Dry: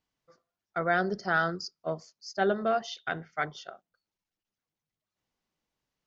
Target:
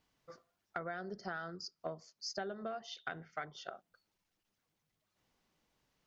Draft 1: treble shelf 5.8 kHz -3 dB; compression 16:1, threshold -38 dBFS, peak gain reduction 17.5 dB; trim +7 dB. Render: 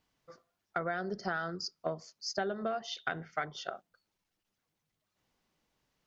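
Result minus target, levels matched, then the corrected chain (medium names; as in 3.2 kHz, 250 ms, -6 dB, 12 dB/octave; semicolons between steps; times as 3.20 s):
compression: peak gain reduction -7 dB
treble shelf 5.8 kHz -3 dB; compression 16:1, threshold -45.5 dBFS, peak gain reduction 24.5 dB; trim +7 dB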